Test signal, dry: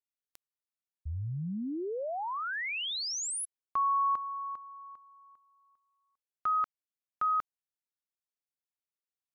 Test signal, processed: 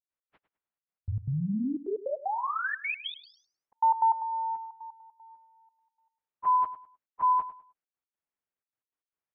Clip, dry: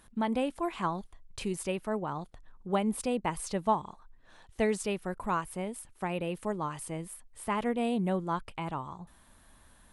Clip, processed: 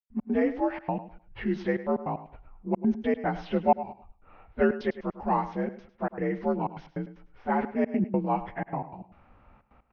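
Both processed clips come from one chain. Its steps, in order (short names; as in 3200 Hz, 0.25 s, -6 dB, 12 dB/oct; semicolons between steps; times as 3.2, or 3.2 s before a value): inharmonic rescaling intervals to 86%; LPF 3200 Hz 24 dB/oct; low-pass opened by the level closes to 1800 Hz, open at -26.5 dBFS; step gate ".x.xxxxx.x" 153 bpm -60 dB; feedback echo 0.103 s, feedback 25%, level -14 dB; gain +6.5 dB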